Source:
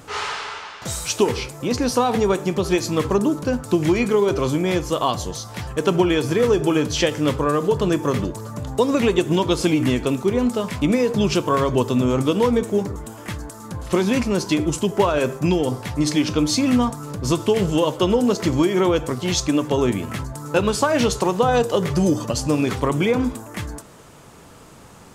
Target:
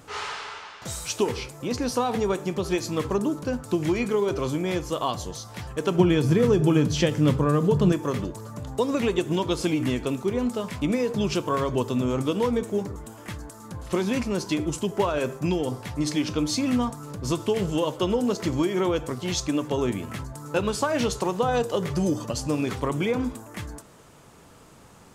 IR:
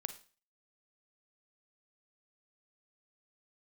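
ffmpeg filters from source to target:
-filter_complex "[0:a]asettb=1/sr,asplit=3[a][b][c];[a]atrim=end=5.984[d];[b]atrim=start=5.98:end=7.92,asetpts=PTS-STARTPTS,afade=t=in:d=0.004:c=qsin,afade=t=out:st=1.936:d=0.004:c=qsin,equalizer=f=160:w=0.92:g=11.5[e];[c]atrim=start=7.916[f];[d][e]acrossfade=d=0.004:c1=hsin:c2=qsin[g];[g][f]acrossfade=d=0.004:c1=qsin:c2=hsin,volume=-6dB"

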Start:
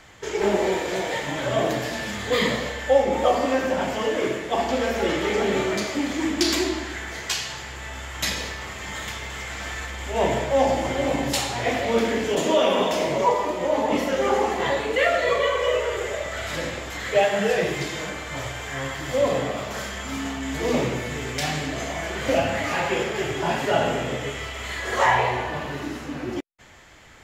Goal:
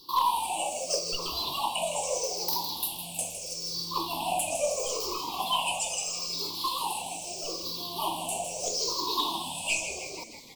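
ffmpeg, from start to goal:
-filter_complex "[0:a]afftfilt=real='re*pow(10,23/40*sin(2*PI*(0.55*log(max(b,1)*sr/1024/100)/log(2)-(-0.3)*(pts-256)/sr)))':imag='im*pow(10,23/40*sin(2*PI*(0.55*log(max(b,1)*sr/1024/100)/log(2)-(-0.3)*(pts-256)/sr)))':win_size=1024:overlap=0.75,aeval=exprs='1.41*(cos(1*acos(clip(val(0)/1.41,-1,1)))-cos(1*PI/2))+0.158*(cos(2*acos(clip(val(0)/1.41,-1,1)))-cos(2*PI/2))+0.0126*(cos(3*acos(clip(val(0)/1.41,-1,1)))-cos(3*PI/2))':c=same,asuperstop=centerf=650:order=12:qfactor=1.1,asetrate=113778,aresample=44100,equalizer=f=76:t=o:w=2.4:g=-14.5,asplit=8[a][b][c][d][e][f][g][h];[b]adelay=158,afreqshift=-75,volume=-10dB[i];[c]adelay=316,afreqshift=-150,volume=-14.7dB[j];[d]adelay=474,afreqshift=-225,volume=-19.5dB[k];[e]adelay=632,afreqshift=-300,volume=-24.2dB[l];[f]adelay=790,afreqshift=-375,volume=-28.9dB[m];[g]adelay=948,afreqshift=-450,volume=-33.7dB[n];[h]adelay=1106,afreqshift=-525,volume=-38.4dB[o];[a][i][j][k][l][m][n][o]amix=inputs=8:normalize=0,volume=9.5dB,asoftclip=hard,volume=-9.5dB,volume=-8.5dB"

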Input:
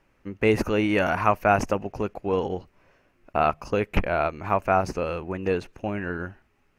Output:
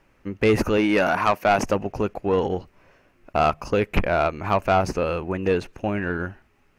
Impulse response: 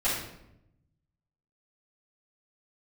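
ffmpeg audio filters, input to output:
-filter_complex "[0:a]asettb=1/sr,asplit=3[a][b][c];[a]atrim=end=0.774[d];[b]atrim=start=0.77:end=1.64,asetpts=PTS-STARTPTS,afade=t=in:d=0.004:c=qsin,afade=t=out:st=0.866:d=0.004:c=qsin,highpass=170[e];[c]atrim=start=1.636[f];[d][e]acrossfade=d=0.004:c1=hsin:c2=qsin[g];[g][f]acrossfade=d=0.004:c1=qsin:c2=hsin,asoftclip=type=tanh:threshold=-15dB,volume=4.5dB"

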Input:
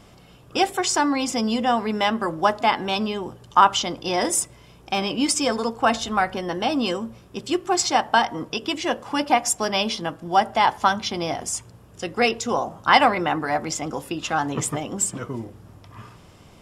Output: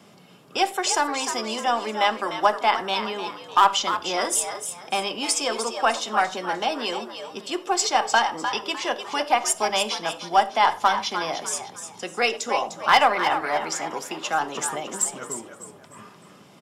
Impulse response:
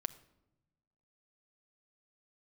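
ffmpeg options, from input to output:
-filter_complex "[0:a]highpass=f=140:w=0.5412,highpass=f=140:w=1.3066,acrossover=split=380|930|1700[a][b][c][d];[a]acompressor=threshold=-43dB:ratio=6[e];[e][b][c][d]amix=inputs=4:normalize=0,aeval=exprs='0.944*(cos(1*acos(clip(val(0)/0.944,-1,1)))-cos(1*PI/2))+0.0668*(cos(3*acos(clip(val(0)/0.944,-1,1)))-cos(3*PI/2))+0.0119*(cos(4*acos(clip(val(0)/0.944,-1,1)))-cos(4*PI/2))':c=same,asoftclip=type=hard:threshold=-10dB,asplit=5[f][g][h][i][j];[g]adelay=302,afreqshift=80,volume=-9dB[k];[h]adelay=604,afreqshift=160,volume=-18.6dB[l];[i]adelay=906,afreqshift=240,volume=-28.3dB[m];[j]adelay=1208,afreqshift=320,volume=-37.9dB[n];[f][k][l][m][n]amix=inputs=5:normalize=0[o];[1:a]atrim=start_sample=2205,afade=t=out:st=0.17:d=0.01,atrim=end_sample=7938,asetrate=52920,aresample=44100[p];[o][p]afir=irnorm=-1:irlink=0,volume=4dB"

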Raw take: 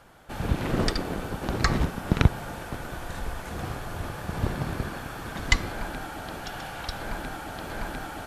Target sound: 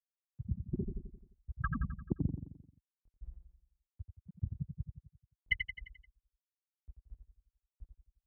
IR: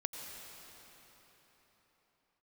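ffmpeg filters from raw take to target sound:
-af "afftfilt=real='re*gte(hypot(re,im),0.398)':imag='im*gte(hypot(re,im),0.398)':win_size=1024:overlap=0.75,highpass=47,lowshelf=f=350:g=-9.5,acompressor=threshold=-36dB:ratio=4,aecho=1:1:87|174|261|348|435|522:0.447|0.228|0.116|0.0593|0.0302|0.0154,volume=5dB"

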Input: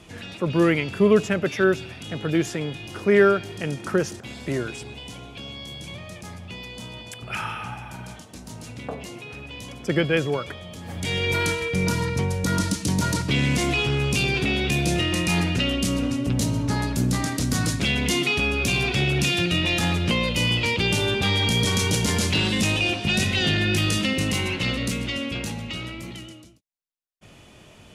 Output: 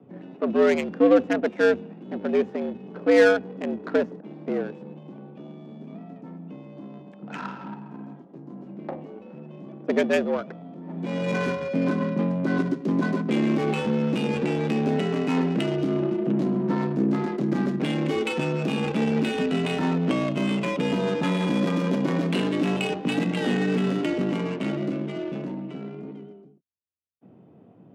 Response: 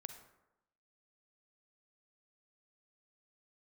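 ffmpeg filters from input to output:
-af "adynamicsmooth=sensitivity=1:basefreq=530,afreqshift=84"

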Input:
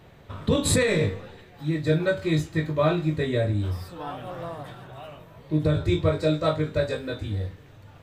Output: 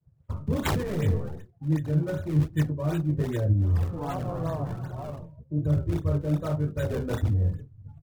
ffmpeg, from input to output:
-filter_complex "[0:a]agate=range=-33dB:threshold=-41dB:ratio=3:detection=peak,areverse,acompressor=threshold=-30dB:ratio=16,areverse,afftdn=nr=22:nf=-49,bass=f=250:g=9,treble=f=4k:g=7,acrossover=split=300[a][b];[b]acompressor=threshold=-30dB:ratio=10[c];[a][c]amix=inputs=2:normalize=0,acrossover=split=1600[d][e];[d]flanger=delay=5.2:depth=8.7:regen=67:speed=1.2:shape=sinusoidal[f];[e]acrusher=samples=38:mix=1:aa=0.000001:lfo=1:lforange=60.8:lforate=2.6[g];[f][g]amix=inputs=2:normalize=0,asetrate=42845,aresample=44100,atempo=1.0293,volume=7dB"

